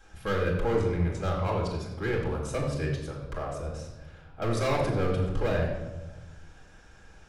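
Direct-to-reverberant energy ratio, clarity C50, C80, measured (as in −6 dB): −3.5 dB, 3.5 dB, 5.5 dB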